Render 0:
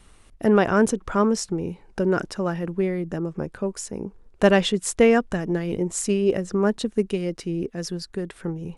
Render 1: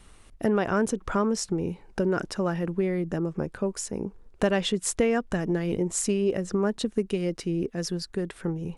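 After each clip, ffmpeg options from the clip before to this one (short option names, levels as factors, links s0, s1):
-af "acompressor=threshold=0.0794:ratio=3"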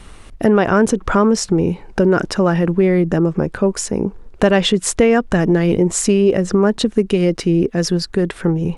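-filter_complex "[0:a]highshelf=f=7000:g=-7.5,asplit=2[s0][s1];[s1]alimiter=limit=0.075:level=0:latency=1:release=67,volume=1.06[s2];[s0][s2]amix=inputs=2:normalize=0,volume=2.37"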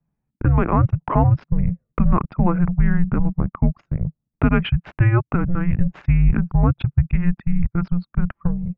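-af "anlmdn=3980,dynaudnorm=f=230:g=7:m=2,highpass=f=170:t=q:w=0.5412,highpass=f=170:t=q:w=1.307,lowpass=f=2900:t=q:w=0.5176,lowpass=f=2900:t=q:w=0.7071,lowpass=f=2900:t=q:w=1.932,afreqshift=-350,volume=0.708"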